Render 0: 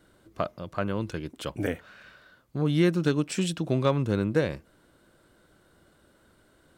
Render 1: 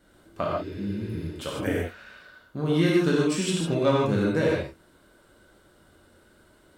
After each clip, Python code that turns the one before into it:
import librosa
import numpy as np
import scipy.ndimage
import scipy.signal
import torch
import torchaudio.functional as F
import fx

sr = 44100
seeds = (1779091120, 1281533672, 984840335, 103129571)

y = fx.spec_repair(x, sr, seeds[0], start_s=0.52, length_s=0.72, low_hz=250.0, high_hz=9500.0, source='after')
y = fx.rev_gated(y, sr, seeds[1], gate_ms=180, shape='flat', drr_db=-4.5)
y = y * librosa.db_to_amplitude(-2.0)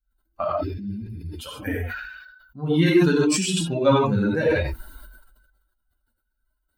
y = fx.bin_expand(x, sr, power=2.0)
y = fx.sustainer(y, sr, db_per_s=44.0)
y = y * librosa.db_to_amplitude(6.0)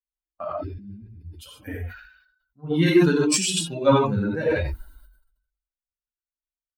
y = fx.band_widen(x, sr, depth_pct=70)
y = y * librosa.db_to_amplitude(-3.0)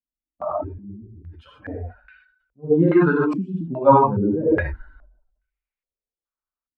y = fx.filter_held_lowpass(x, sr, hz=2.4, low_hz=270.0, high_hz=2300.0)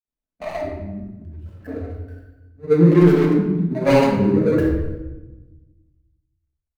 y = scipy.signal.medfilt(x, 41)
y = fx.room_shoebox(y, sr, seeds[2], volume_m3=530.0, walls='mixed', distance_m=1.5)